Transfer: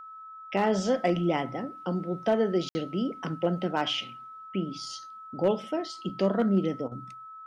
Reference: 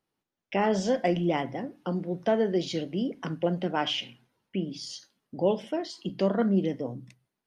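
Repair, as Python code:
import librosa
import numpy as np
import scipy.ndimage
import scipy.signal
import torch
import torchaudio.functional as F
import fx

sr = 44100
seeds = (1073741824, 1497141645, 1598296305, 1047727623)

y = fx.fix_declip(x, sr, threshold_db=-15.5)
y = fx.notch(y, sr, hz=1300.0, q=30.0)
y = fx.fix_ambience(y, sr, seeds[0], print_start_s=0.0, print_end_s=0.5, start_s=2.69, end_s=2.75)
y = fx.fix_interpolate(y, sr, at_s=(6.88,), length_ms=35.0)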